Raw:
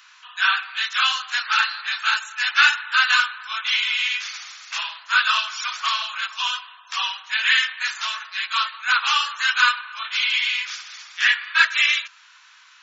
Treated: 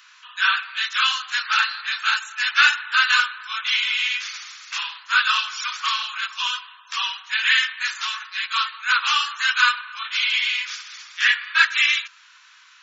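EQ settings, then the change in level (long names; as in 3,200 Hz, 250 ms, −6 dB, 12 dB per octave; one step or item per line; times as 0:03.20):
high-pass filter 920 Hz 24 dB per octave
0.0 dB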